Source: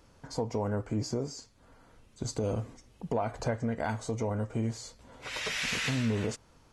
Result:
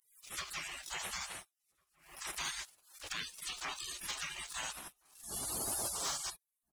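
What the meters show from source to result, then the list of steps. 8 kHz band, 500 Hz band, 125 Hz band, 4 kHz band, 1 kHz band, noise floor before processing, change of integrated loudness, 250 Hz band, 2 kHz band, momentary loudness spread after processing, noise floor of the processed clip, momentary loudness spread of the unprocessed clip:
+4.5 dB, −19.5 dB, −25.0 dB, −1.5 dB, −6.5 dB, −61 dBFS, −6.5 dB, −23.0 dB, −5.5 dB, 14 LU, below −85 dBFS, 14 LU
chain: meter weighting curve D
gate on every frequency bin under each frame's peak −30 dB weak
leveller curve on the samples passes 2
slap from a distant wall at 240 metres, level −30 dB
background raised ahead of every attack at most 110 dB per second
level +7.5 dB

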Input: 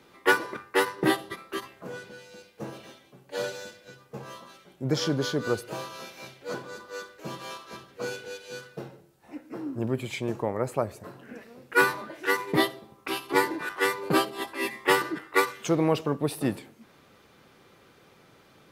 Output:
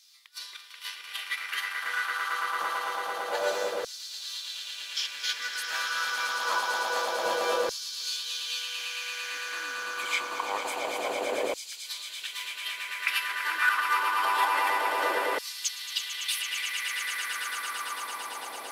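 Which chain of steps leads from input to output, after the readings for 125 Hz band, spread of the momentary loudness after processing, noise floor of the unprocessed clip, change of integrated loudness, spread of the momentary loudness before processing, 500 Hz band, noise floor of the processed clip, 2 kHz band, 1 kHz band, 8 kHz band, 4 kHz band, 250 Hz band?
below −30 dB, 10 LU, −58 dBFS, −1.5 dB, 19 LU, −5.0 dB, −43 dBFS, +1.5 dB, +2.5 dB, +6.0 dB, +6.0 dB, −18.0 dB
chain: compressor whose output falls as the input rises −32 dBFS, ratio −0.5
echo that builds up and dies away 112 ms, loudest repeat 8, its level −8.5 dB
auto-filter high-pass saw down 0.26 Hz 520–5,200 Hz

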